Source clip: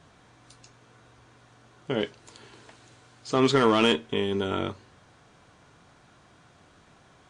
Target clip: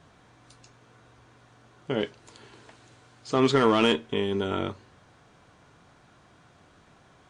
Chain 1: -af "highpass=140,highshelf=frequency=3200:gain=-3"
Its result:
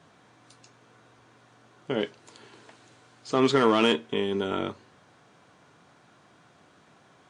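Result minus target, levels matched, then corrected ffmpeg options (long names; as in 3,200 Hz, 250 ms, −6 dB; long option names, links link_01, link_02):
125 Hz band −3.5 dB
-af "highshelf=frequency=3200:gain=-3"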